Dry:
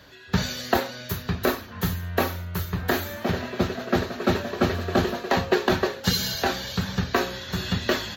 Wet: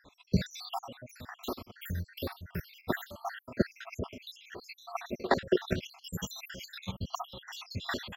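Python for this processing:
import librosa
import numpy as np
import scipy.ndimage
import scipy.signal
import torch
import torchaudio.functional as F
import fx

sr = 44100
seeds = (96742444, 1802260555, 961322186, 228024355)

y = fx.spec_dropout(x, sr, seeds[0], share_pct=73)
y = fx.high_shelf(y, sr, hz=7100.0, db=-5.0)
y = fx.level_steps(y, sr, step_db=11)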